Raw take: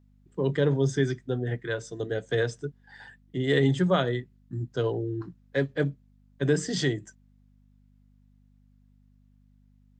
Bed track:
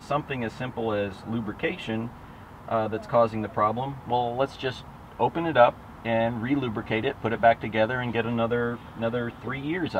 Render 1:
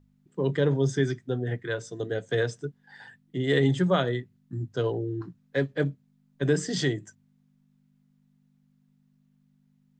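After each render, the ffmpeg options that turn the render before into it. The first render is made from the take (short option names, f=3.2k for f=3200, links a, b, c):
-af "bandreject=f=50:t=h:w=4,bandreject=f=100:t=h:w=4"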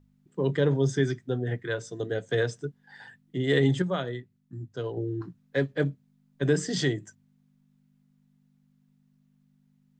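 -filter_complex "[0:a]asplit=3[a][b][c];[a]atrim=end=3.822[d];[b]atrim=start=3.818:end=4.972,asetpts=PTS-STARTPTS,volume=-6dB[e];[c]atrim=start=4.968[f];[d][e]acrossfade=d=0.004:c1=hsin:c2=hsin[g];[g][f]acrossfade=d=0.004:c1=hsin:c2=hsin"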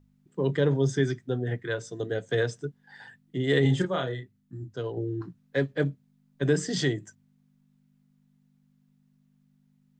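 -filter_complex "[0:a]asettb=1/sr,asplit=3[a][b][c];[a]atrim=end=3.624[d];[b]atrim=start=3.62:end=4.74,asetpts=PTS-STARTPTS,afade=t=in:d=0.004:c=qsin,afade=t=out:st=1.116:d=0.004:c=qsin,asplit=2[e][f];[f]adelay=31,volume=-4dB[g];[e][g]amix=inputs=2:normalize=0,atrim=end_sample=49392[h];[c]atrim=start=4.736[i];[d][h]acrossfade=d=0.004:c1=hsin:c2=qsin[j];[j][i]acrossfade=d=0.004:c1=qsin:c2=hsin"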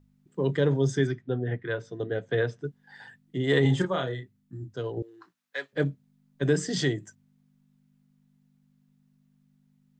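-filter_complex "[0:a]asettb=1/sr,asplit=3[a][b][c];[a]atrim=end=1.074[d];[b]atrim=start=1.07:end=2.65,asetpts=PTS-STARTPTS,afade=t=in:d=0.004:c=qsin,afade=t=out:st=1.576:d=0.004:c=qsin,lowpass=3.1k[e];[c]atrim=start=2.646[f];[d][e]acrossfade=d=0.004:c1=hsin:c2=qsin[g];[g][f]acrossfade=d=0.004:c1=qsin:c2=hsin,asettb=1/sr,asplit=3[h][i][j];[h]atrim=end=3.414[k];[i]atrim=start=3.41:end=3.93,asetpts=PTS-STARTPTS,afade=t=in:d=0.004:c=qsin,afade=t=out:st=0.516:d=0.004:c=qsin,equalizer=f=1k:w=2.1:g=7.5[l];[j]atrim=start=3.926[m];[k][l]acrossfade=d=0.004:c1=hsin:c2=qsin[n];[n][m]acrossfade=d=0.004:c1=qsin:c2=hsin,asettb=1/sr,asplit=3[o][p][q];[o]atrim=end=5.024[r];[p]atrim=start=5.02:end=5.73,asetpts=PTS-STARTPTS,afade=t=in:d=0.004:c=qsin,afade=t=out:st=0.706:d=0.004:c=qsin,highpass=980[s];[q]atrim=start=5.726[t];[r][s]acrossfade=d=0.004:c1=hsin:c2=qsin[u];[u][t]acrossfade=d=0.004:c1=qsin:c2=hsin"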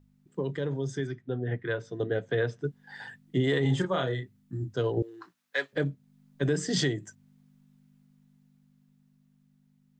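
-af "alimiter=limit=-21.5dB:level=0:latency=1:release=406,dynaudnorm=f=390:g=11:m=5dB"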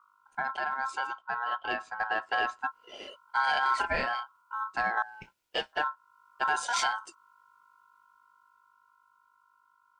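-filter_complex "[0:a]aeval=exprs='val(0)*sin(2*PI*1200*n/s)':c=same,asplit=2[a][b];[b]asoftclip=type=tanh:threshold=-27dB,volume=-11.5dB[c];[a][c]amix=inputs=2:normalize=0"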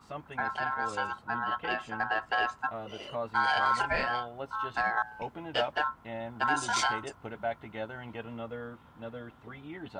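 -filter_complex "[1:a]volume=-14.5dB[a];[0:a][a]amix=inputs=2:normalize=0"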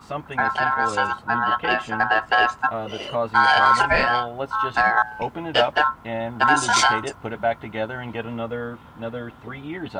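-af "volume=11dB"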